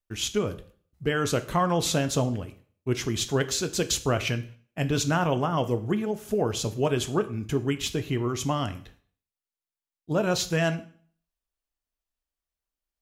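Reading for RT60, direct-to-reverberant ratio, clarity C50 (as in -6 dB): 0.50 s, 10.0 dB, 15.5 dB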